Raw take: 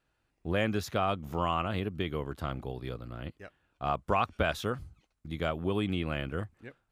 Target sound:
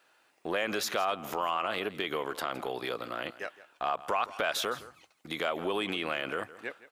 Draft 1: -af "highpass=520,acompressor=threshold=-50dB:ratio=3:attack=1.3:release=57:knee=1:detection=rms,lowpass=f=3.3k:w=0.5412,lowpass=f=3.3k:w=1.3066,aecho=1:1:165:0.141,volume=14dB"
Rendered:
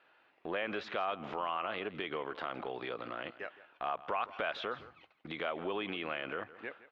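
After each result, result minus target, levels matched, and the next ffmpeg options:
compressor: peak gain reduction +5 dB; 4000 Hz band -3.0 dB
-af "highpass=520,acompressor=threshold=-42.5dB:ratio=3:attack=1.3:release=57:knee=1:detection=rms,lowpass=f=3.3k:w=0.5412,lowpass=f=3.3k:w=1.3066,aecho=1:1:165:0.141,volume=14dB"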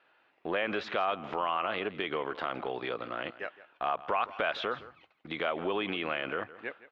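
4000 Hz band -3.0 dB
-af "highpass=520,acompressor=threshold=-42.5dB:ratio=3:attack=1.3:release=57:knee=1:detection=rms,aecho=1:1:165:0.141,volume=14dB"

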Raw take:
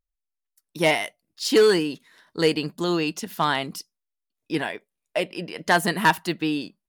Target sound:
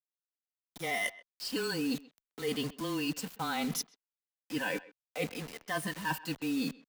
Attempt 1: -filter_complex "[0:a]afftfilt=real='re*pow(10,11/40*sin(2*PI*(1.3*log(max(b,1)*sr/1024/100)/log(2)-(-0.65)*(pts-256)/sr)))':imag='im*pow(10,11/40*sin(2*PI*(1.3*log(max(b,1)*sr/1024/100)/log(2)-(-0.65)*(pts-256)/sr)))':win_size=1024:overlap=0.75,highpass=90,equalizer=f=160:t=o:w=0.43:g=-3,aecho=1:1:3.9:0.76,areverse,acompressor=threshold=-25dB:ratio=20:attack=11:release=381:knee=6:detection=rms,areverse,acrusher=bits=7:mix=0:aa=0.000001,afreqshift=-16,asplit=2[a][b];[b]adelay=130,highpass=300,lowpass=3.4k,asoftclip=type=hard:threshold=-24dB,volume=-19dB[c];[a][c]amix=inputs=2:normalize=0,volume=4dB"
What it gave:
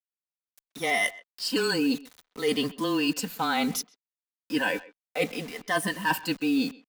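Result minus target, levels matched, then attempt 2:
compressor: peak gain reduction -8 dB; 125 Hz band -5.0 dB
-filter_complex "[0:a]afftfilt=real='re*pow(10,11/40*sin(2*PI*(1.3*log(max(b,1)*sr/1024/100)/log(2)-(-0.65)*(pts-256)/sr)))':imag='im*pow(10,11/40*sin(2*PI*(1.3*log(max(b,1)*sr/1024/100)/log(2)-(-0.65)*(pts-256)/sr)))':win_size=1024:overlap=0.75,highpass=90,equalizer=f=160:t=o:w=0.43:g=5,aecho=1:1:3.9:0.76,areverse,acompressor=threshold=-33.5dB:ratio=20:attack=11:release=381:knee=6:detection=rms,areverse,acrusher=bits=7:mix=0:aa=0.000001,afreqshift=-16,asplit=2[a][b];[b]adelay=130,highpass=300,lowpass=3.4k,asoftclip=type=hard:threshold=-24dB,volume=-19dB[c];[a][c]amix=inputs=2:normalize=0,volume=4dB"

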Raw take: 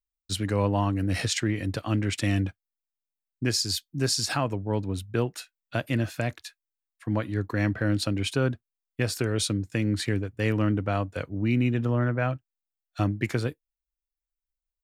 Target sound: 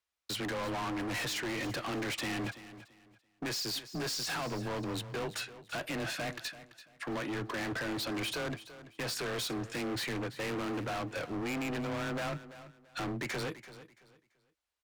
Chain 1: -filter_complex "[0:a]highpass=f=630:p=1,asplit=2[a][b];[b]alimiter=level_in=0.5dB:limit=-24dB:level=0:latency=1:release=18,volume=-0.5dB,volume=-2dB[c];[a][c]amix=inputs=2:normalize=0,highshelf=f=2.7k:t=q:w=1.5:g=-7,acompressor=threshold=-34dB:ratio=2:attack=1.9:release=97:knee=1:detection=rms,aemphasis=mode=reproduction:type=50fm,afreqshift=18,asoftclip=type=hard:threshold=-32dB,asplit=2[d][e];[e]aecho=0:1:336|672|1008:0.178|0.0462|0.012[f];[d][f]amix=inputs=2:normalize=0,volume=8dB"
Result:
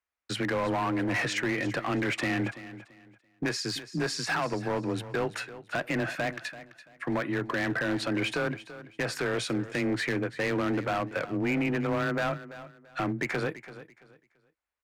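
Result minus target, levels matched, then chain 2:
4000 Hz band -5.0 dB; hard clip: distortion -8 dB
-filter_complex "[0:a]highpass=f=630:p=1,asplit=2[a][b];[b]alimiter=level_in=0.5dB:limit=-24dB:level=0:latency=1:release=18,volume=-0.5dB,volume=-2dB[c];[a][c]amix=inputs=2:normalize=0,acompressor=threshold=-34dB:ratio=2:attack=1.9:release=97:knee=1:detection=rms,aemphasis=mode=reproduction:type=50fm,afreqshift=18,asoftclip=type=hard:threshold=-42dB,asplit=2[d][e];[e]aecho=0:1:336|672|1008:0.178|0.0462|0.012[f];[d][f]amix=inputs=2:normalize=0,volume=8dB"

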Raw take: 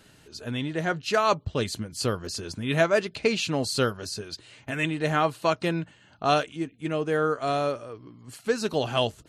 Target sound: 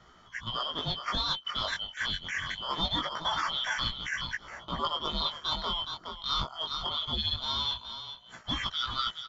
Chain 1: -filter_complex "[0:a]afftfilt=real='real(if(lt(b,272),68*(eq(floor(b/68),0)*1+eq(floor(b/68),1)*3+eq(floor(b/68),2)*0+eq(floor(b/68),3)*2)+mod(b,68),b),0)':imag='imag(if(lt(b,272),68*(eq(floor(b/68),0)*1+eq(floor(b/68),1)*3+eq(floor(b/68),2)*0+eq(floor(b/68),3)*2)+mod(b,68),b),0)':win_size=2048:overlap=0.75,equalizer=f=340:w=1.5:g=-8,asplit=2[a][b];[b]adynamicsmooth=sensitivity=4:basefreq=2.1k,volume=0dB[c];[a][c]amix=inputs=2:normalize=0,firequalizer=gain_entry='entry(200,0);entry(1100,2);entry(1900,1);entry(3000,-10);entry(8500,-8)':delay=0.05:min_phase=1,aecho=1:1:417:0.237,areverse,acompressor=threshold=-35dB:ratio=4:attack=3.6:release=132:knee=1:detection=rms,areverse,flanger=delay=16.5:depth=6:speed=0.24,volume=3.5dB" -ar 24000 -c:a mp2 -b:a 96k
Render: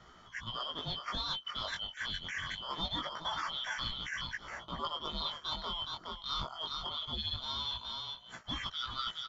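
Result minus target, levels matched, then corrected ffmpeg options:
compressor: peak gain reduction +6.5 dB
-filter_complex "[0:a]afftfilt=real='real(if(lt(b,272),68*(eq(floor(b/68),0)*1+eq(floor(b/68),1)*3+eq(floor(b/68),2)*0+eq(floor(b/68),3)*2)+mod(b,68),b),0)':imag='imag(if(lt(b,272),68*(eq(floor(b/68),0)*1+eq(floor(b/68),1)*3+eq(floor(b/68),2)*0+eq(floor(b/68),3)*2)+mod(b,68),b),0)':win_size=2048:overlap=0.75,equalizer=f=340:w=1.5:g=-8,asplit=2[a][b];[b]adynamicsmooth=sensitivity=4:basefreq=2.1k,volume=0dB[c];[a][c]amix=inputs=2:normalize=0,firequalizer=gain_entry='entry(200,0);entry(1100,2);entry(1900,1);entry(3000,-10);entry(8500,-8)':delay=0.05:min_phase=1,aecho=1:1:417:0.237,areverse,acompressor=threshold=-26.5dB:ratio=4:attack=3.6:release=132:knee=1:detection=rms,areverse,flanger=delay=16.5:depth=6:speed=0.24,volume=3.5dB" -ar 24000 -c:a mp2 -b:a 96k

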